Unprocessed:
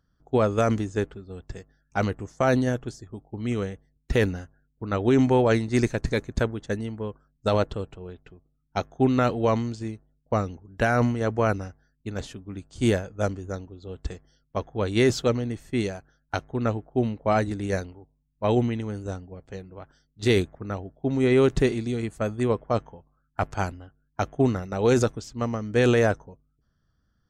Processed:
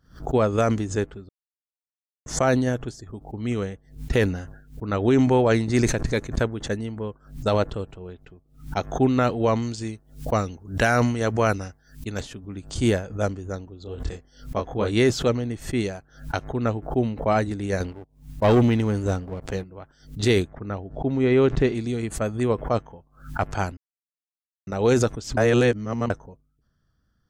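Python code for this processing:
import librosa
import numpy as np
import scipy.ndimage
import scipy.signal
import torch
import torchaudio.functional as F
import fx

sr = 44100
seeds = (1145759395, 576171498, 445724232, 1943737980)

y = fx.sustainer(x, sr, db_per_s=79.0, at=(4.23, 5.95))
y = fx.high_shelf(y, sr, hz=2500.0, db=9.0, at=(9.62, 12.23))
y = fx.doubler(y, sr, ms=24.0, db=-4, at=(13.83, 14.92))
y = fx.leveller(y, sr, passes=2, at=(17.8, 19.64))
y = fx.air_absorb(y, sr, metres=120.0, at=(20.5, 21.75))
y = fx.edit(y, sr, fx.silence(start_s=1.29, length_s=0.97),
    fx.silence(start_s=23.77, length_s=0.9),
    fx.reverse_span(start_s=25.37, length_s=0.73), tone=tone)
y = fx.pre_swell(y, sr, db_per_s=140.0)
y = y * librosa.db_to_amplitude(1.0)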